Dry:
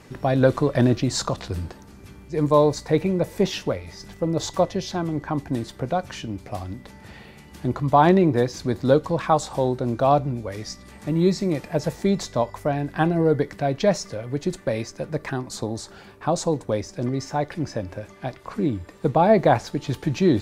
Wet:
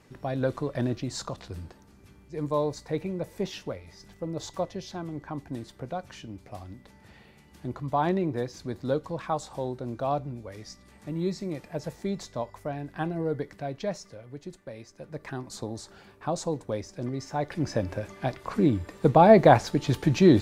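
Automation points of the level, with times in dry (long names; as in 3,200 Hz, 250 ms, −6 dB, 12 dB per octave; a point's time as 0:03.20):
0:13.54 −10 dB
0:14.76 −17 dB
0:15.42 −7 dB
0:17.26 −7 dB
0:17.77 +1 dB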